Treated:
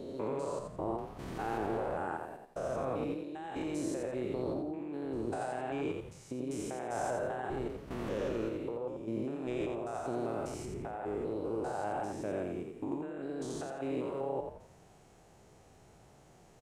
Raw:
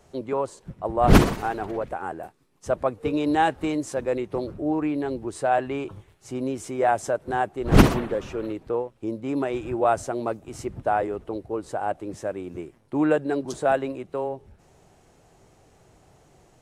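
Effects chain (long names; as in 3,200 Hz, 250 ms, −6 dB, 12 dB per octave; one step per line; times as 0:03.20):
spectrum averaged block by block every 200 ms
compressor whose output falls as the input rises −32 dBFS, ratio −1
echo with shifted repeats 86 ms, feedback 32%, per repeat +33 Hz, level −5.5 dB
level −6.5 dB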